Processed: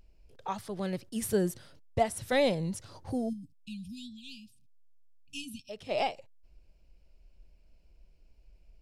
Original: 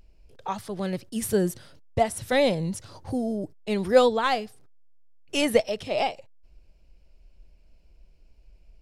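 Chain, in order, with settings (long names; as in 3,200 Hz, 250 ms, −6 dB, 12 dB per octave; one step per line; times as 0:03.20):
0:03.33–0:05.89: downward compressor 1.5 to 1, threshold −46 dBFS, peak gain reduction 12 dB
0:03.29–0:05.69: time-frequency box erased 280–2,400 Hz
level −4.5 dB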